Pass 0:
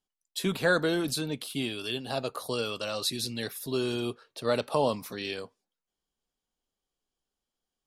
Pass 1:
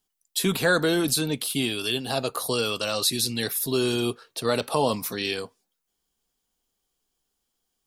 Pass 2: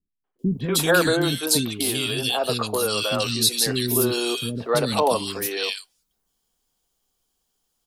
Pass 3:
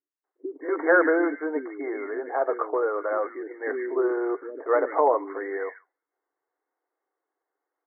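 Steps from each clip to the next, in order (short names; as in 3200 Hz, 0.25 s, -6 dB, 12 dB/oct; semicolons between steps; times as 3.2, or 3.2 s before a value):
high shelf 6800 Hz +9.5 dB; notch 580 Hz, Q 12; in parallel at 0 dB: limiter -21.5 dBFS, peak gain reduction 9 dB
three bands offset in time lows, mids, highs 0.24/0.39 s, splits 310/2100 Hz; gain +4.5 dB
brick-wall FIR band-pass 280–2200 Hz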